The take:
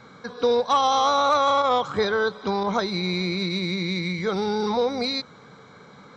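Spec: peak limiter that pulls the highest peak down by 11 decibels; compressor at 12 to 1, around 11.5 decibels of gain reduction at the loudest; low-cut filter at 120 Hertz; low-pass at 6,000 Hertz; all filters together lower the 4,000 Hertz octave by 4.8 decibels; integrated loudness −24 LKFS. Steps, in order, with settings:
high-pass filter 120 Hz
low-pass filter 6,000 Hz
parametric band 4,000 Hz −4.5 dB
downward compressor 12 to 1, threshold −28 dBFS
level +13.5 dB
brickwall limiter −15.5 dBFS

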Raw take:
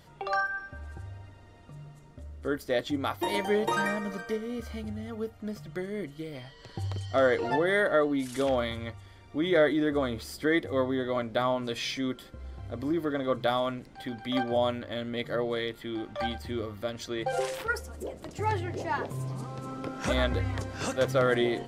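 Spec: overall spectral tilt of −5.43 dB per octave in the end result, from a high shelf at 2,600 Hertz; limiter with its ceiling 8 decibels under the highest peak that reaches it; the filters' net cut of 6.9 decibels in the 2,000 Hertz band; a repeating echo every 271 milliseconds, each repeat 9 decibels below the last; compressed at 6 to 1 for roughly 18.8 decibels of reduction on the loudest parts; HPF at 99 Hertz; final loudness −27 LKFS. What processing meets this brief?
high-pass filter 99 Hz
parametric band 2,000 Hz −6 dB
high-shelf EQ 2,600 Hz −7.5 dB
downward compressor 6 to 1, threshold −42 dBFS
brickwall limiter −37 dBFS
repeating echo 271 ms, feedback 35%, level −9 dB
level +19.5 dB

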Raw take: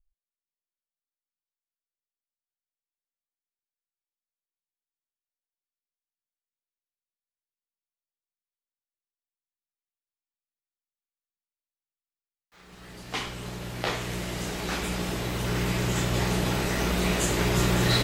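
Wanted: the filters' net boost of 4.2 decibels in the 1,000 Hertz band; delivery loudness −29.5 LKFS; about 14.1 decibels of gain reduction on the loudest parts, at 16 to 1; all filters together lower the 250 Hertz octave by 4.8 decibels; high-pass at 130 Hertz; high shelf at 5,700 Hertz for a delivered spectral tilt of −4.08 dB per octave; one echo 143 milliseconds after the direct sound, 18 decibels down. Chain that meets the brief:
high-pass filter 130 Hz
parametric band 250 Hz −7 dB
parametric band 1,000 Hz +6 dB
high-shelf EQ 5,700 Hz −7 dB
downward compressor 16 to 1, threshold −35 dBFS
single-tap delay 143 ms −18 dB
level +9.5 dB

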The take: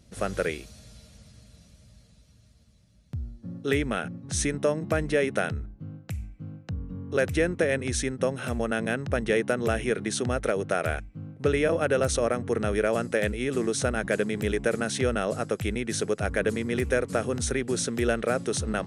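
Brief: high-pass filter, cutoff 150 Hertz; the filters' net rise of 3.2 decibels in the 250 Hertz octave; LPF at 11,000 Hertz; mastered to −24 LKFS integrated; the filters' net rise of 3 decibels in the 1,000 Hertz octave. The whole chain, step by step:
high-pass filter 150 Hz
low-pass filter 11,000 Hz
parametric band 250 Hz +4.5 dB
parametric band 1,000 Hz +4.5 dB
level +1.5 dB

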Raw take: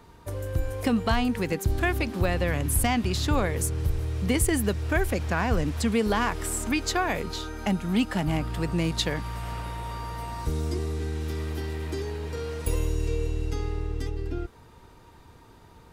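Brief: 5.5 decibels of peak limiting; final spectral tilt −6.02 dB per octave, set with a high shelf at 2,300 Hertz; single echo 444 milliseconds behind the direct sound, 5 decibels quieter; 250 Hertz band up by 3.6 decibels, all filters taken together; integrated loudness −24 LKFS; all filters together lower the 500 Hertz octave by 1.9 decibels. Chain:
parametric band 250 Hz +5.5 dB
parametric band 500 Hz −4 dB
high-shelf EQ 2,300 Hz −7.5 dB
brickwall limiter −16.5 dBFS
single-tap delay 444 ms −5 dB
level +3.5 dB

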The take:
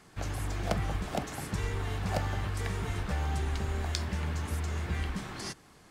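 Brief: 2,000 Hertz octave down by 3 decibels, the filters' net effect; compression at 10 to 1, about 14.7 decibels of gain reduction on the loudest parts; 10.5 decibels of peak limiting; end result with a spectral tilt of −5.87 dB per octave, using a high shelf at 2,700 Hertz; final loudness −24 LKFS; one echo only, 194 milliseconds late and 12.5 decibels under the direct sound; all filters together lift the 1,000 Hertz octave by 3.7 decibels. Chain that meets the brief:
parametric band 1,000 Hz +6.5 dB
parametric band 2,000 Hz −4.5 dB
high-shelf EQ 2,700 Hz −4 dB
downward compressor 10 to 1, threshold −39 dBFS
brickwall limiter −36 dBFS
single-tap delay 194 ms −12.5 dB
level +21.5 dB

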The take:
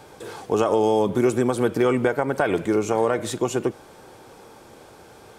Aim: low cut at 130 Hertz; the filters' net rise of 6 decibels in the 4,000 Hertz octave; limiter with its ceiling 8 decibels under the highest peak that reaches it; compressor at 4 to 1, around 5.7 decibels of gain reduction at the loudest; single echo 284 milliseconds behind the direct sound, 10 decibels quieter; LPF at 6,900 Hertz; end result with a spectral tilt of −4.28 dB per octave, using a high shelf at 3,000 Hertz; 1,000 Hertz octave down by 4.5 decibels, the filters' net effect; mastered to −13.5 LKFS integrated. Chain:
high-pass filter 130 Hz
low-pass filter 6,900 Hz
parametric band 1,000 Hz −7 dB
high-shelf EQ 3,000 Hz +5.5 dB
parametric band 4,000 Hz +4.5 dB
downward compressor 4 to 1, threshold −23 dBFS
brickwall limiter −19.5 dBFS
single-tap delay 284 ms −10 dB
level +16 dB

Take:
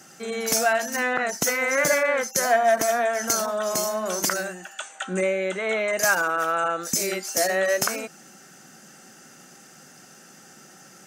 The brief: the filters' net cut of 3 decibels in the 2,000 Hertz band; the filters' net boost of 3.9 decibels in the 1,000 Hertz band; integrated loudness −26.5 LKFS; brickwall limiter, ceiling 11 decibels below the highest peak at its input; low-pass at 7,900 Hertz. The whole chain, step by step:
low-pass filter 7,900 Hz
parametric band 1,000 Hz +8.5 dB
parametric band 2,000 Hz −7.5 dB
level −0.5 dB
brickwall limiter −17 dBFS

